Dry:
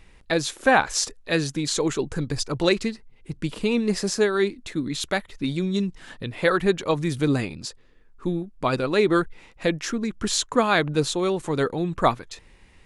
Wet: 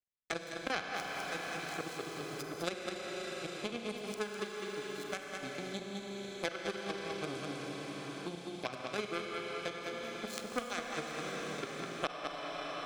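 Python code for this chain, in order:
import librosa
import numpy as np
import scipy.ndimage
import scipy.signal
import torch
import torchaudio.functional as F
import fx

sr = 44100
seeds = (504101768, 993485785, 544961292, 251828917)

p1 = fx.reverse_delay(x, sr, ms=212, wet_db=-13.5)
p2 = fx.chopper(p1, sr, hz=4.3, depth_pct=65, duty_pct=90)
p3 = fx.power_curve(p2, sr, exponent=3.0)
p4 = fx.notch_comb(p3, sr, f0_hz=940.0)
p5 = p4 + fx.echo_single(p4, sr, ms=203, db=-6.5, dry=0)
p6 = fx.rev_schroeder(p5, sr, rt60_s=3.0, comb_ms=31, drr_db=2.5)
p7 = fx.band_squash(p6, sr, depth_pct=100)
y = F.gain(torch.from_numpy(p7), -1.0).numpy()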